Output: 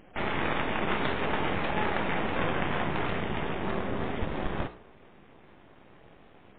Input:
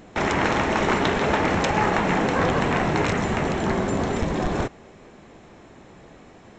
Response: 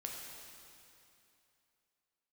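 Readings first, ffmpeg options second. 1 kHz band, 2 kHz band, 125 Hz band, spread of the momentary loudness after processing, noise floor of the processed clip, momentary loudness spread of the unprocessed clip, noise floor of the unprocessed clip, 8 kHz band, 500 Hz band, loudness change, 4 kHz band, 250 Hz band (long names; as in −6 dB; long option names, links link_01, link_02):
−8.5 dB, −7.0 dB, −9.0 dB, 4 LU, −55 dBFS, 4 LU, −48 dBFS, below −40 dB, −9.0 dB, −8.0 dB, −6.5 dB, −9.0 dB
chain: -af "aeval=exprs='max(val(0),0)':channel_layout=same,bandreject=frequency=60.52:width_type=h:width=4,bandreject=frequency=121.04:width_type=h:width=4,bandreject=frequency=181.56:width_type=h:width=4,bandreject=frequency=242.08:width_type=h:width=4,bandreject=frequency=302.6:width_type=h:width=4,bandreject=frequency=363.12:width_type=h:width=4,bandreject=frequency=423.64:width_type=h:width=4,bandreject=frequency=484.16:width_type=h:width=4,bandreject=frequency=544.68:width_type=h:width=4,bandreject=frequency=605.2:width_type=h:width=4,bandreject=frequency=665.72:width_type=h:width=4,bandreject=frequency=726.24:width_type=h:width=4,bandreject=frequency=786.76:width_type=h:width=4,bandreject=frequency=847.28:width_type=h:width=4,bandreject=frequency=907.8:width_type=h:width=4,bandreject=frequency=968.32:width_type=h:width=4,bandreject=frequency=1028.84:width_type=h:width=4,bandreject=frequency=1089.36:width_type=h:width=4,bandreject=frequency=1149.88:width_type=h:width=4,bandreject=frequency=1210.4:width_type=h:width=4,bandreject=frequency=1270.92:width_type=h:width=4,bandreject=frequency=1331.44:width_type=h:width=4,bandreject=frequency=1391.96:width_type=h:width=4,bandreject=frequency=1452.48:width_type=h:width=4,bandreject=frequency=1513:width_type=h:width=4,bandreject=frequency=1573.52:width_type=h:width=4,bandreject=frequency=1634.04:width_type=h:width=4,bandreject=frequency=1694.56:width_type=h:width=4,volume=-3dB" -ar 8000 -c:a libmp3lame -b:a 16k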